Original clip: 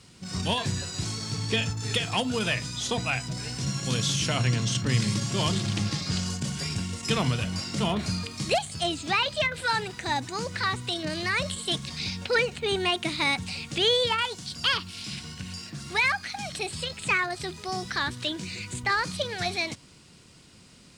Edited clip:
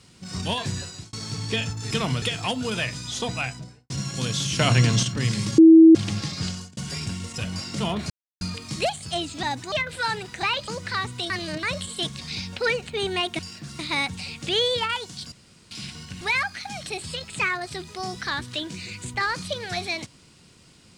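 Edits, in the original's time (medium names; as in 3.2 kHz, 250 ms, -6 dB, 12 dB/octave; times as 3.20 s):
0.81–1.13 s: fade out
3.08–3.59 s: studio fade out
4.28–4.72 s: gain +6.5 dB
5.27–5.64 s: bleep 324 Hz -6.5 dBFS
6.14–6.46 s: fade out
7.07–7.38 s: move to 1.91 s
8.10 s: insert silence 0.31 s
9.12–9.37 s: swap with 10.08–10.37 s
10.99–11.32 s: reverse
14.61–15.00 s: room tone
15.50–15.90 s: move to 13.08 s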